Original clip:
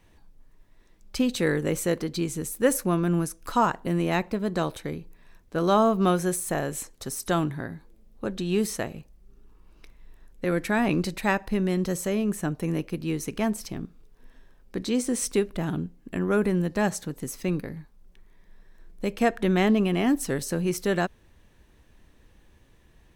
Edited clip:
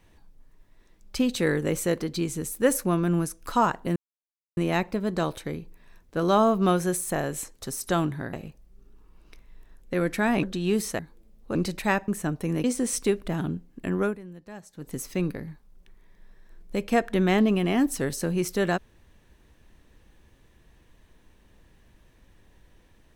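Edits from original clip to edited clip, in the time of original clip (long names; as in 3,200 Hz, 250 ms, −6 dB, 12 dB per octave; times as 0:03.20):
0:03.96: splice in silence 0.61 s
0:07.72–0:08.28: swap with 0:08.84–0:10.94
0:11.47–0:12.27: remove
0:12.83–0:14.93: remove
0:16.30–0:17.19: duck −18 dB, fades 0.16 s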